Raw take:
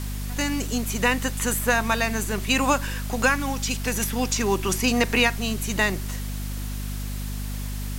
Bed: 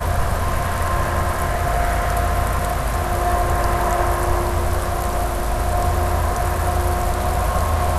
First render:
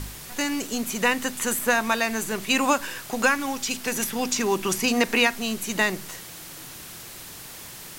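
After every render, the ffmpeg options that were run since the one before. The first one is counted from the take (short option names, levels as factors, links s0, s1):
-af "bandreject=f=50:t=h:w=4,bandreject=f=100:t=h:w=4,bandreject=f=150:t=h:w=4,bandreject=f=200:t=h:w=4,bandreject=f=250:t=h:w=4"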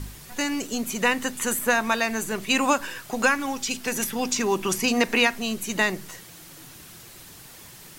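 -af "afftdn=nr=6:nf=-41"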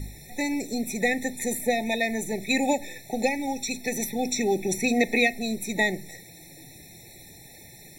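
-af "afftfilt=real='re*eq(mod(floor(b*sr/1024/870),2),0)':imag='im*eq(mod(floor(b*sr/1024/870),2),0)':win_size=1024:overlap=0.75"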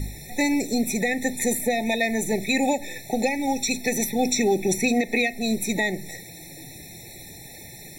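-af "alimiter=limit=0.133:level=0:latency=1:release=263,acontrast=41"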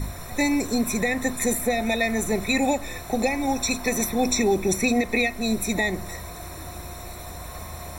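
-filter_complex "[1:a]volume=0.112[s0];[0:a][s0]amix=inputs=2:normalize=0"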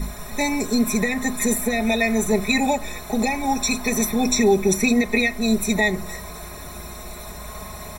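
-af "aecho=1:1:4.8:0.86"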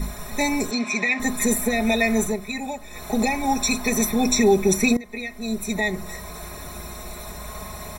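-filter_complex "[0:a]asettb=1/sr,asplit=3[s0][s1][s2];[s0]atrim=end=0.714[s3];[s1]atrim=start=0.71:end=1.2,asetpts=PTS-STARTPTS,afade=t=in:d=0.004:c=qsin,afade=t=out:st=0.486:d=0.004:c=qsin,highpass=320,equalizer=f=460:t=q:w=4:g=-8,equalizer=f=1500:t=q:w=4:g=-3,equalizer=f=2400:t=q:w=4:g=10,lowpass=f=6100:w=0.5412,lowpass=f=6100:w=1.3066[s4];[s2]atrim=start=1.196[s5];[s3][s4]acrossfade=d=0.004:c1=hsin:c2=qsin[s6];[s6][s5]acrossfade=d=0.004:c1=qsin:c2=hsin,asplit=4[s7][s8][s9][s10];[s7]atrim=end=2.37,asetpts=PTS-STARTPTS,afade=t=out:st=2.23:d=0.14:silence=0.316228[s11];[s8]atrim=start=2.37:end=2.9,asetpts=PTS-STARTPTS,volume=0.316[s12];[s9]atrim=start=2.9:end=4.97,asetpts=PTS-STARTPTS,afade=t=in:d=0.14:silence=0.316228,afade=t=out:st=2.066:d=0.004:c=hsin:silence=0.105925[s13];[s10]atrim=start=4.97,asetpts=PTS-STARTPTS,afade=t=in:d=1.48:silence=0.105925[s14];[s11][s12][s13][s14]concat=n=4:v=0:a=1"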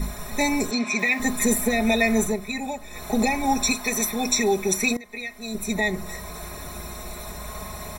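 -filter_complex "[0:a]asettb=1/sr,asplit=3[s0][s1][s2];[s0]atrim=end=0.994[s3];[s1]atrim=start=0.99:end=1.75,asetpts=PTS-STARTPTS,afade=t=in:d=0.004:c=qsin,afade=t=out:st=0.756:d=0.004:c=qsin,acrusher=bits=8:dc=4:mix=0:aa=0.000001[s4];[s2]atrim=start=1.746[s5];[s3][s4]acrossfade=d=0.004:c1=hsin:c2=qsin[s6];[s6][s5]acrossfade=d=0.004:c1=qsin:c2=hsin,asettb=1/sr,asplit=3[s7][s8][s9];[s7]atrim=end=3.724[s10];[s8]atrim=start=3.72:end=5.55,asetpts=PTS-STARTPTS,afade=t=in:d=0.004:c=qsin,afade=t=out:st=1.826:d=0.004:c=qsin,lowshelf=f=460:g=-9[s11];[s9]atrim=start=5.546[s12];[s10][s11]acrossfade=d=0.004:c1=hsin:c2=qsin[s13];[s13][s12]acrossfade=d=0.004:c1=qsin:c2=hsin"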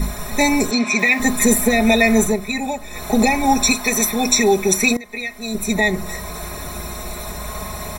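-af "volume=2.11,alimiter=limit=0.794:level=0:latency=1"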